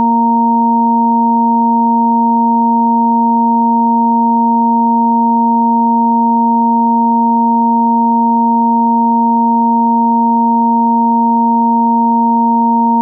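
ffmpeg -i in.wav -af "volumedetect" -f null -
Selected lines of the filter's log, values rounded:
mean_volume: -10.3 dB
max_volume: -5.5 dB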